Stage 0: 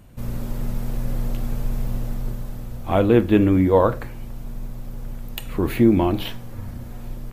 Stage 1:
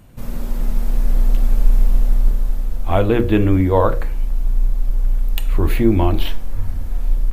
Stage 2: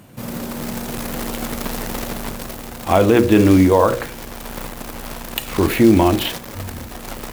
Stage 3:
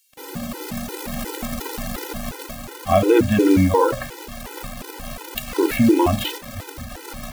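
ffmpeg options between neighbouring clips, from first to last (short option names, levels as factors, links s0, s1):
-af "bandreject=f=60:t=h:w=6,bandreject=f=120:t=h:w=6,bandreject=f=180:t=h:w=6,bandreject=f=240:t=h:w=6,bandreject=f=300:t=h:w=6,bandreject=f=360:t=h:w=6,bandreject=f=420:t=h:w=6,bandreject=f=480:t=h:w=6,bandreject=f=540:t=h:w=6,bandreject=f=600:t=h:w=6,asubboost=boost=6.5:cutoff=65,volume=1.33"
-af "acrusher=bits=6:mode=log:mix=0:aa=0.000001,highpass=140,alimiter=level_in=2.37:limit=0.891:release=50:level=0:latency=1,volume=0.841"
-filter_complex "[0:a]acrossover=split=3200[s0][s1];[s0]acrusher=bits=5:mix=0:aa=0.000001[s2];[s2][s1]amix=inputs=2:normalize=0,afftfilt=real='re*gt(sin(2*PI*2.8*pts/sr)*(1-2*mod(floor(b*sr/1024/260),2)),0)':imag='im*gt(sin(2*PI*2.8*pts/sr)*(1-2*mod(floor(b*sr/1024/260),2)),0)':win_size=1024:overlap=0.75"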